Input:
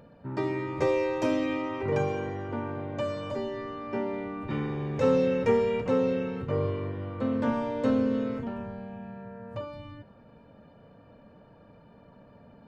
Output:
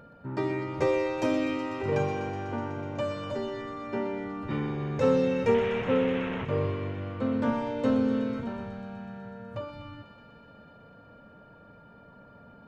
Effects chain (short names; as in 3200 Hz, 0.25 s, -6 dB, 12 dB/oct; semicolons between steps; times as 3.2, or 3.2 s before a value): 5.54–6.45 delta modulation 16 kbps, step -27.5 dBFS; whine 1400 Hz -54 dBFS; thinning echo 0.124 s, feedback 83%, high-pass 540 Hz, level -11 dB